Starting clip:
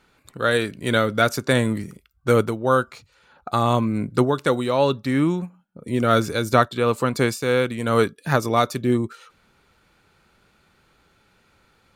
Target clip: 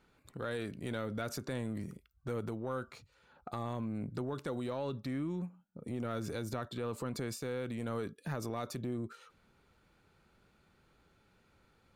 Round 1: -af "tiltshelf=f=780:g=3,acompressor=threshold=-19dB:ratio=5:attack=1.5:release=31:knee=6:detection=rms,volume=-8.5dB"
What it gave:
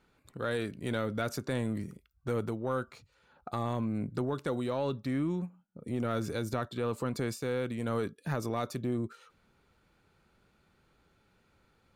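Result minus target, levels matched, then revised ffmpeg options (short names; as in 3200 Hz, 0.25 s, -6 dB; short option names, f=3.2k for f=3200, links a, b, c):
compressor: peak gain reduction -5.5 dB
-af "tiltshelf=f=780:g=3,acompressor=threshold=-26dB:ratio=5:attack=1.5:release=31:knee=6:detection=rms,volume=-8.5dB"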